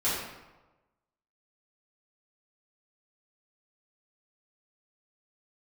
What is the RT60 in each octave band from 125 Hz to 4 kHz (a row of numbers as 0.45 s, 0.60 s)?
1.2 s, 1.1 s, 1.1 s, 1.1 s, 0.90 s, 0.70 s